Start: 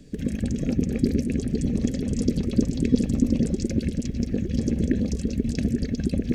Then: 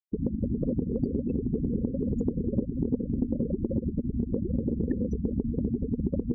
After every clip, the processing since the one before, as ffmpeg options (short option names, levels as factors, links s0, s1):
-af "afftfilt=real='re*gte(hypot(re,im),0.0708)':imag='im*gte(hypot(re,im),0.0708)':win_size=1024:overlap=0.75,equalizer=f=600:t=o:w=1.1:g=10,acompressor=threshold=0.0631:ratio=6"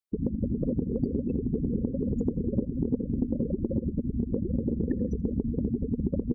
-af "aecho=1:1:82|164:0.0668|0.0247"